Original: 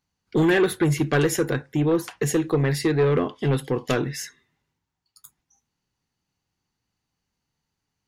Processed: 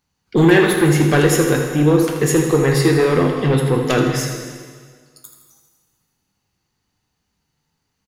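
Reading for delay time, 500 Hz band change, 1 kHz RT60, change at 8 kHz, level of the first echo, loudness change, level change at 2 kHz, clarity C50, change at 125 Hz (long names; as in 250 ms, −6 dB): 81 ms, +7.0 dB, 1.7 s, +8.0 dB, −10.0 dB, +7.0 dB, +7.5 dB, 3.0 dB, +7.5 dB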